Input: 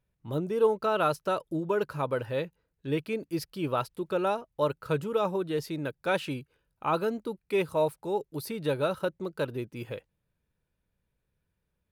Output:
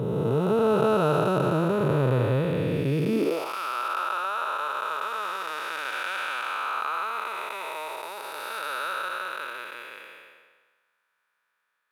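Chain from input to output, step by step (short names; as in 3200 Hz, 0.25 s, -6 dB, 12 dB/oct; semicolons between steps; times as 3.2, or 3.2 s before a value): time blur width 0.779 s; in parallel at +2 dB: compressor, threshold -43 dBFS, peak gain reduction 13 dB; on the sum: high-pass sweep 120 Hz -> 1300 Hz, 3.01–3.56; mismatched tape noise reduction decoder only; gain +8 dB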